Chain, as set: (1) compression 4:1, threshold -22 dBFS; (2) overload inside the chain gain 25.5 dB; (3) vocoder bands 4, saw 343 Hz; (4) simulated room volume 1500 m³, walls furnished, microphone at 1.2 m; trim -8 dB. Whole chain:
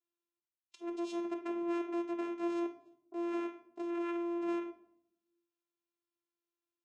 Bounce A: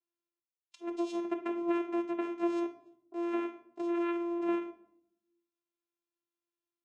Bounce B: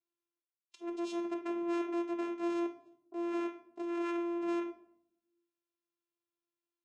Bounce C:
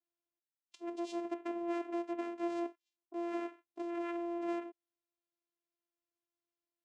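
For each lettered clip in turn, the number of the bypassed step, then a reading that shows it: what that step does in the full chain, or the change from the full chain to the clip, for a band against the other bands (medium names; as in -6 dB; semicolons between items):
2, distortion -9 dB; 1, momentary loudness spread change +1 LU; 4, echo-to-direct -7.0 dB to none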